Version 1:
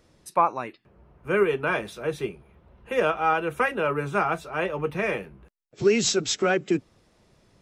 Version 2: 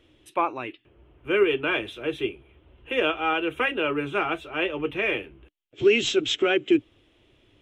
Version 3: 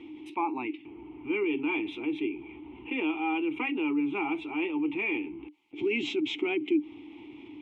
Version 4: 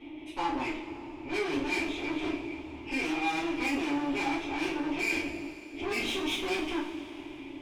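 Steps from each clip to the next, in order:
FFT filter 120 Hz 0 dB, 180 Hz -14 dB, 300 Hz +7 dB, 480 Hz -2 dB, 1 kHz -5 dB, 1.9 kHz 0 dB, 3.2 kHz +12 dB, 4.6 kHz -12 dB, 6.7 kHz -9 dB
vowel filter u; level flattener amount 50%
valve stage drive 34 dB, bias 0.6; two-slope reverb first 0.41 s, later 3.5 s, from -18 dB, DRR -8.5 dB; trim -2 dB

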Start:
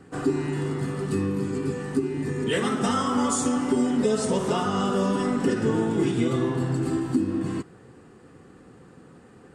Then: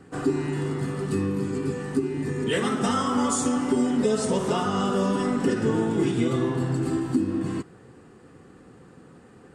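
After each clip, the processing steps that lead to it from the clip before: no audible change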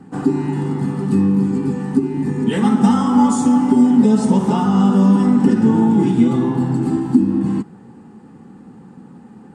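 small resonant body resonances 210/840 Hz, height 17 dB, ringing for 40 ms; trim -1 dB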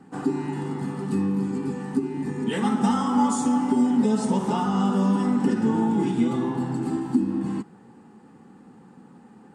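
bass shelf 270 Hz -8.5 dB; trim -4 dB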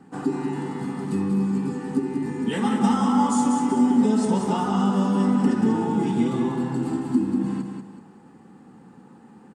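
feedback delay 189 ms, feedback 34%, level -6 dB

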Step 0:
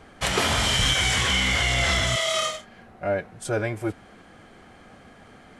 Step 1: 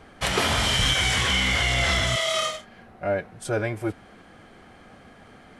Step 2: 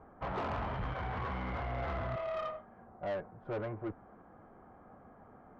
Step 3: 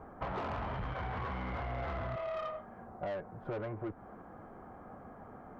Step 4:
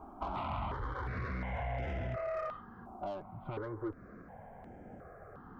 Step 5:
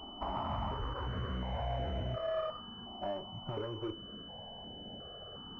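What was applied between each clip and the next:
peaking EQ 7.2 kHz -3 dB 0.51 oct
four-pole ladder low-pass 1.3 kHz, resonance 35%; valve stage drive 32 dB, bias 0.25
compression, threshold -42 dBFS, peak gain reduction 8.5 dB; trim +6 dB
stepped phaser 2.8 Hz 500–4200 Hz; trim +2.5 dB
on a send at -9.5 dB: reverberation RT60 0.35 s, pre-delay 3 ms; on the sum: class-D stage that switches slowly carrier 3 kHz; trim +1 dB

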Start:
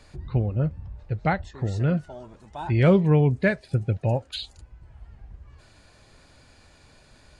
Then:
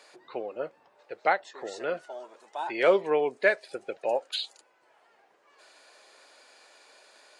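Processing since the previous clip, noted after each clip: high-pass 420 Hz 24 dB/octave; trim +1.5 dB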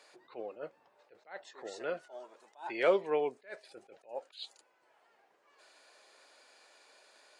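attacks held to a fixed rise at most 210 dB/s; trim -5.5 dB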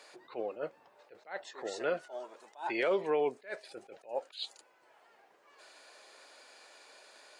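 peak limiter -26.5 dBFS, peak gain reduction 11 dB; trim +5 dB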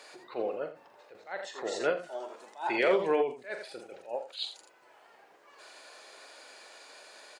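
multi-tap echo 43/83 ms -9/-8 dB; endings held to a fixed fall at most 150 dB/s; trim +4 dB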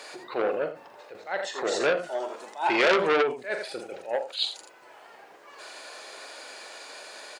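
transformer saturation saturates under 2.2 kHz; trim +8.5 dB

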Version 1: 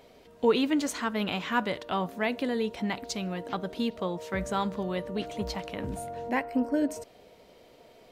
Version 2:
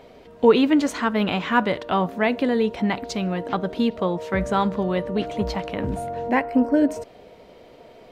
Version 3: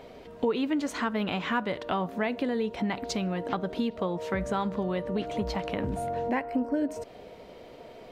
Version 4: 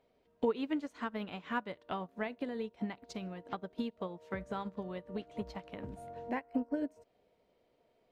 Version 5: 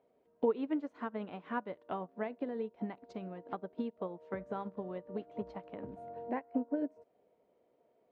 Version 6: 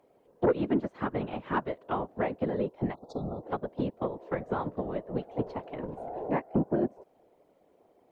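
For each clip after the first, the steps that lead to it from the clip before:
treble shelf 4.3 kHz -11.5 dB; trim +8.5 dB
compression 3:1, threshold -28 dBFS, peak gain reduction 13.5 dB
upward expansion 2.5:1, over -38 dBFS; trim -3 dB
band-pass filter 470 Hz, Q 0.55; trim +1.5 dB
whisper effect; sine folder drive 4 dB, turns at -17.5 dBFS; spectral selection erased 2.94–3.43 s, 1.4–3.4 kHz

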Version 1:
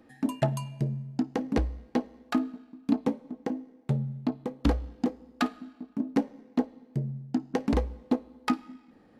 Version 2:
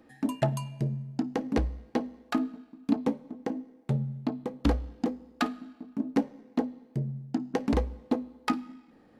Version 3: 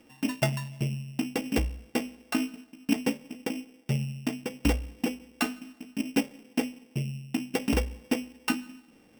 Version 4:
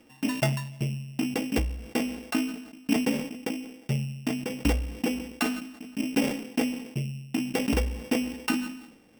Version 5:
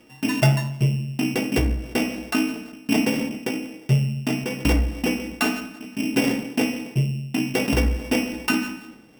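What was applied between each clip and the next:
hum notches 50/100/150/200/250 Hz
sorted samples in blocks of 16 samples
decay stretcher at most 71 dB/s
reverberation RT60 0.70 s, pre-delay 4 ms, DRR 3 dB; trim +4 dB

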